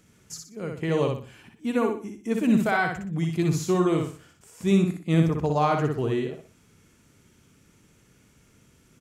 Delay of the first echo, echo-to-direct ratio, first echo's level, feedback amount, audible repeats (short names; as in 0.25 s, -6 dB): 61 ms, -3.5 dB, -4.0 dB, 33%, 4